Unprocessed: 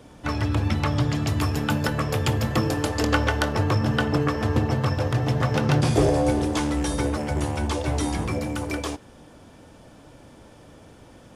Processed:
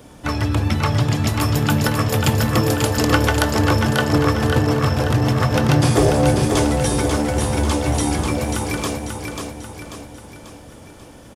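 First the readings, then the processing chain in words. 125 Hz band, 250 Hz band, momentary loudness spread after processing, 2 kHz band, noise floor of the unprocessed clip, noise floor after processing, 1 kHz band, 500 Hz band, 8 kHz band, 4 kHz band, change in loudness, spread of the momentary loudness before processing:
+5.5 dB, +5.5 dB, 12 LU, +5.5 dB, -49 dBFS, -42 dBFS, +5.5 dB, +5.5 dB, +9.5 dB, +7.0 dB, +5.5 dB, 7 LU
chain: high shelf 9200 Hz +10.5 dB; on a send: feedback echo 0.54 s, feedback 48%, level -5 dB; on the sum: gain +4 dB

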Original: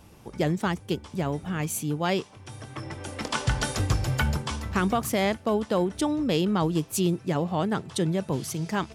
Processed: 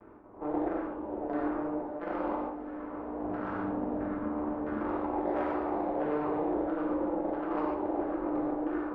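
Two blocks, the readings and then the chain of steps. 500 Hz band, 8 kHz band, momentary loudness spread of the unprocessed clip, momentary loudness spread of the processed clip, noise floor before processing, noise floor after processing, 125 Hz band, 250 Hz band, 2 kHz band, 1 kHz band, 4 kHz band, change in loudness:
-3.5 dB, under -40 dB, 9 LU, 5 LU, -50 dBFS, -41 dBFS, -20.5 dB, -4.0 dB, -11.5 dB, -3.0 dB, under -25 dB, -6.0 dB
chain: stepped spectrum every 0.4 s; de-hum 161.1 Hz, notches 31; gate with hold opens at -38 dBFS; tilt -3 dB/oct; ring modulator 150 Hz; limiter -21 dBFS, peak gain reduction 9.5 dB; half-wave rectifier; LFO low-pass saw down 1.5 Hz 640–1600 Hz; tone controls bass -15 dB, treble -9 dB; added harmonics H 3 -20 dB, 8 -41 dB, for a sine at -22 dBFS; on a send: diffused feedback echo 0.51 s, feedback 70%, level -16 dB; on the sum: non-linear reverb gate 0.17 s flat, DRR -4.5 dB

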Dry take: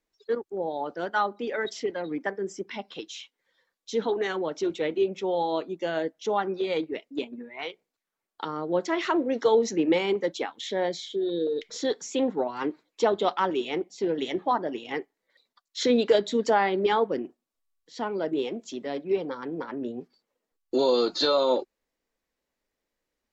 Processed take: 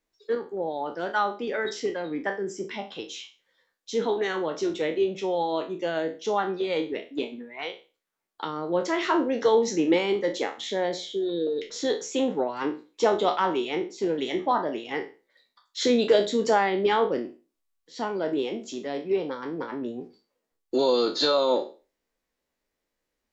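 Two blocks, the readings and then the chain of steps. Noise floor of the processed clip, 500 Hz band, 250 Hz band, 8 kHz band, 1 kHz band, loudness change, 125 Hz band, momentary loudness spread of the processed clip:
-82 dBFS, +1.0 dB, +1.0 dB, n/a, +1.0 dB, +1.0 dB, +1.0 dB, 12 LU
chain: spectral trails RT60 0.33 s

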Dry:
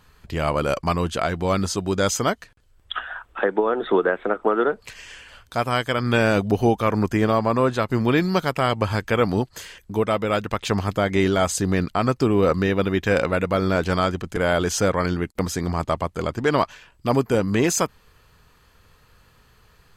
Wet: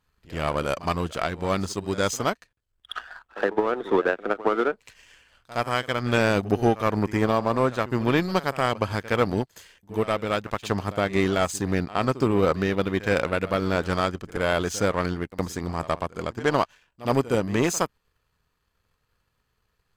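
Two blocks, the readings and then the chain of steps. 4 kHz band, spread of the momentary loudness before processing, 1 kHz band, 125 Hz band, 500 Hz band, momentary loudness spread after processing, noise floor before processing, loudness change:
-3.0 dB, 8 LU, -2.5 dB, -4.0 dB, -3.0 dB, 8 LU, -57 dBFS, -3.0 dB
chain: power-law curve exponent 1.4; pre-echo 67 ms -17 dB

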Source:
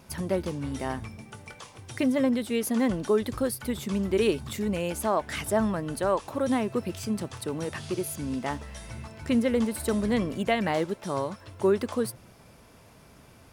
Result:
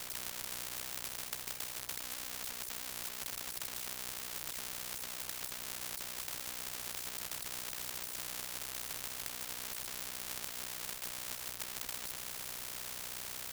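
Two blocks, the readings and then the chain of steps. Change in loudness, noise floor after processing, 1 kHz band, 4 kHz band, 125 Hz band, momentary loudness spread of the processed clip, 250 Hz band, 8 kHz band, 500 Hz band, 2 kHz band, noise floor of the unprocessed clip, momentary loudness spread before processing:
-11.0 dB, -45 dBFS, -16.0 dB, -1.5 dB, -23.0 dB, 1 LU, -31.0 dB, +0.5 dB, -27.5 dB, -8.5 dB, -54 dBFS, 12 LU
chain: half-waves squared off; passive tone stack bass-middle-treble 10-0-10; tube stage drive 29 dB, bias 0.75; ring modulator 31 Hz; negative-ratio compressor -50 dBFS, ratio -1; spectral compressor 10:1; gain +10 dB

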